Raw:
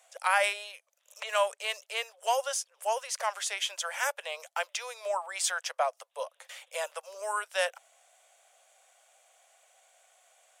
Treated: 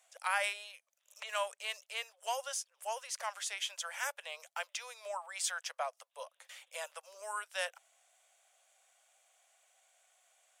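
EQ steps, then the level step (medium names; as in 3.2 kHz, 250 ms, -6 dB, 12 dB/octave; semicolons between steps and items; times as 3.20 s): bass shelf 490 Hz -12 dB; -5.5 dB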